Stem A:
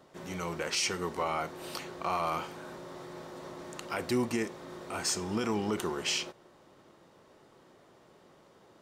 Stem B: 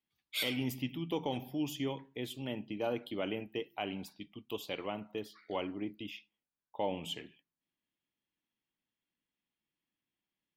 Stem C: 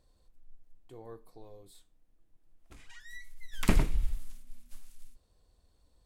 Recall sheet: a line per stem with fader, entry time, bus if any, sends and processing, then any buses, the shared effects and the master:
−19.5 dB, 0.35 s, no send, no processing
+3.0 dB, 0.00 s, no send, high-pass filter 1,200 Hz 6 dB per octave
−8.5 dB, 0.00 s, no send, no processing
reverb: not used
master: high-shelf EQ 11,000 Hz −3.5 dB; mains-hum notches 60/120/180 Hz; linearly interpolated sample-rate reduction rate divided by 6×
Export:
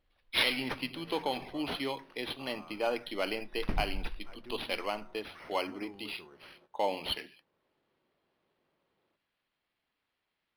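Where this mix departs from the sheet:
stem B +3.0 dB → +11.0 dB
master: missing high-shelf EQ 11,000 Hz −3.5 dB

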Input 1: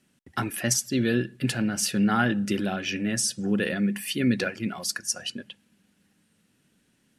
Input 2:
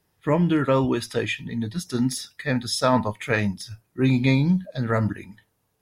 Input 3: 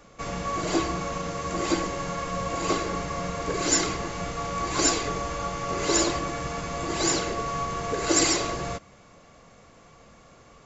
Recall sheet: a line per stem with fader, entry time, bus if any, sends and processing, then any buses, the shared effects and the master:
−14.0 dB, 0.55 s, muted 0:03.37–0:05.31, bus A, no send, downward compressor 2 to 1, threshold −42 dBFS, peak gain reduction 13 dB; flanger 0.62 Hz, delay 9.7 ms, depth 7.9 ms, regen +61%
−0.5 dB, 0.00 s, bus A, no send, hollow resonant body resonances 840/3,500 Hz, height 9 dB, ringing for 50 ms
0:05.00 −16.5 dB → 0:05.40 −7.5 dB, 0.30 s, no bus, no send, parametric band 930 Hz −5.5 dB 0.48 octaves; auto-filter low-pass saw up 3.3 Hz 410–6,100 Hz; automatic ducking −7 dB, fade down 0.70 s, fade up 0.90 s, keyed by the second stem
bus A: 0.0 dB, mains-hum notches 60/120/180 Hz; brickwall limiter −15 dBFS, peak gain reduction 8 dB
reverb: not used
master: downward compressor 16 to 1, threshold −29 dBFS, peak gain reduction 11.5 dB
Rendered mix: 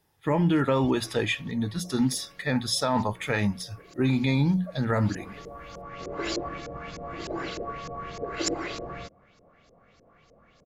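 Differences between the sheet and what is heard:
stem 1: muted
master: missing downward compressor 16 to 1, threshold −29 dBFS, peak gain reduction 11.5 dB

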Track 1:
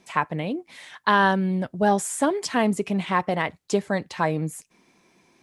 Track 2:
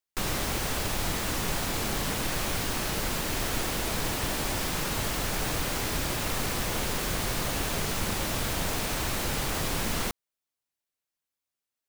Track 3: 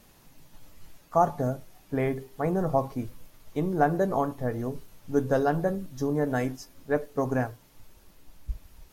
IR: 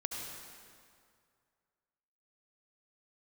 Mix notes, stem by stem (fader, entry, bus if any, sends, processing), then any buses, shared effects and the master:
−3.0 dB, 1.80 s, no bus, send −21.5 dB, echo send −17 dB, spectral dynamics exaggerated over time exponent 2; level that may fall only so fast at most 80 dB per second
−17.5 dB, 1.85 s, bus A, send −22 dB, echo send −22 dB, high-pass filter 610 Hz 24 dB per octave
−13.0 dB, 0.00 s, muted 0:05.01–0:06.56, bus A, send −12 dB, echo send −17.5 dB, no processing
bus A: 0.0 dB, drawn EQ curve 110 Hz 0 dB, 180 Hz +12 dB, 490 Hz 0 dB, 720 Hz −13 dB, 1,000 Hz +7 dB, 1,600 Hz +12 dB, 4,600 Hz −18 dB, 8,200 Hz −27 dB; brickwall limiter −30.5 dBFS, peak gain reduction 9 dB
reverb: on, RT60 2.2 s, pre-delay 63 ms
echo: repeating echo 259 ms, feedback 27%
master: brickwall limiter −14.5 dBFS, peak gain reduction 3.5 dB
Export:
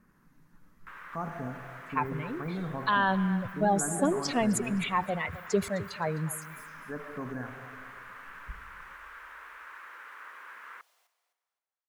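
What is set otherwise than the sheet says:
stem 2: entry 1.85 s → 0.70 s
stem 3: send −12 dB → −6 dB

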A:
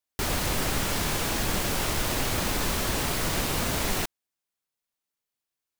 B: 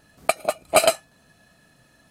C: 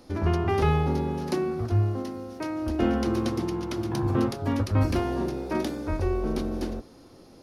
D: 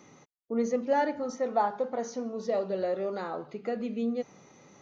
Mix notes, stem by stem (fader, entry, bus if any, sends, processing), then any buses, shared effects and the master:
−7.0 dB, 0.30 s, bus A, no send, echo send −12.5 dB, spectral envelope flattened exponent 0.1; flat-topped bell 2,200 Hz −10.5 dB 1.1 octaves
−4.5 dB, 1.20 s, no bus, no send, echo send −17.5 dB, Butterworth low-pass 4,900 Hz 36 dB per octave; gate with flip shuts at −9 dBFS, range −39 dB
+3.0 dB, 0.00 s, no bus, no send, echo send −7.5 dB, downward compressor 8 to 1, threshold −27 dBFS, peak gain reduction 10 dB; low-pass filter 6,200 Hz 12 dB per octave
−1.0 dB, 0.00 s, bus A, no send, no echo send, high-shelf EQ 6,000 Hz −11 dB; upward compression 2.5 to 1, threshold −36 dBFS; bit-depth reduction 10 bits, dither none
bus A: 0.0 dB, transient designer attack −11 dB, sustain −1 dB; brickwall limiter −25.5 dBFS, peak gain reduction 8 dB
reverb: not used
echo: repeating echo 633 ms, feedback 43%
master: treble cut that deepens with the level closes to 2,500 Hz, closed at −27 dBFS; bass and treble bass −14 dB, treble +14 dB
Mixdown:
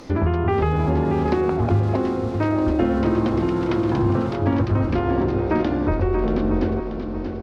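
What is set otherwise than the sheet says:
stem C +3.0 dB → +10.5 dB
master: missing bass and treble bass −14 dB, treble +14 dB

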